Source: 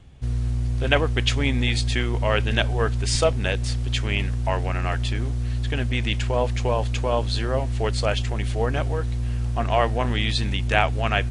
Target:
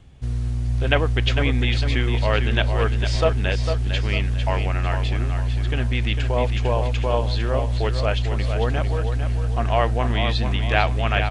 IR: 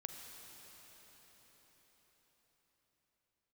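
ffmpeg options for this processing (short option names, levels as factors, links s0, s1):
-filter_complex "[0:a]acrossover=split=4900[s0][s1];[s1]acompressor=threshold=0.00282:ratio=4:attack=1:release=60[s2];[s0][s2]amix=inputs=2:normalize=0,aecho=1:1:451|902|1353|1804:0.422|0.164|0.0641|0.025"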